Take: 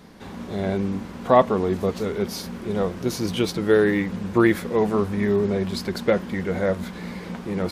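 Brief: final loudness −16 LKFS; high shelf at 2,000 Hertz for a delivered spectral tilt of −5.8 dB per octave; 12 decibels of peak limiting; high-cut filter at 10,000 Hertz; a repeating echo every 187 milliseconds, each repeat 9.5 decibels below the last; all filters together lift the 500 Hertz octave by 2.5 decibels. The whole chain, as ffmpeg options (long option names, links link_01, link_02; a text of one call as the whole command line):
ffmpeg -i in.wav -af "lowpass=10000,equalizer=frequency=500:width_type=o:gain=3.5,highshelf=frequency=2000:gain=-6,alimiter=limit=-14dB:level=0:latency=1,aecho=1:1:187|374|561|748:0.335|0.111|0.0365|0.012,volume=9dB" out.wav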